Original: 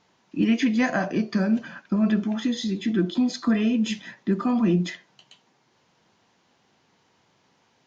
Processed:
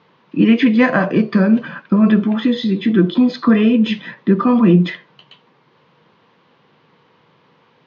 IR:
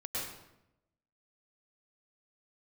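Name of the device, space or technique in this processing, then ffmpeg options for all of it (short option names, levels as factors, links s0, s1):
guitar cabinet: -af "highpass=99,equalizer=f=150:t=q:w=4:g=7,equalizer=f=480:t=q:w=4:g=7,equalizer=f=720:t=q:w=4:g=-5,equalizer=f=1100:t=q:w=4:g=6,lowpass=f=3800:w=0.5412,lowpass=f=3800:w=1.3066,volume=2.66"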